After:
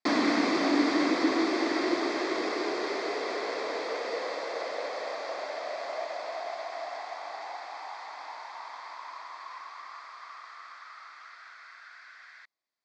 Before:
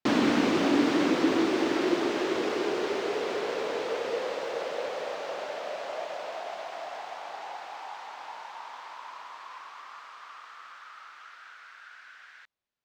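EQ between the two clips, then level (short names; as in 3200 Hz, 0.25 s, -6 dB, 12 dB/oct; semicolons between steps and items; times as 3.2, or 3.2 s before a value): speaker cabinet 220–7800 Hz, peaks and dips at 300 Hz +6 dB, 680 Hz +7 dB, 1100 Hz +7 dB, 2000 Hz +9 dB, 4600 Hz +9 dB; high shelf 5300 Hz +6 dB; notch 2900 Hz, Q 6.6; -5.0 dB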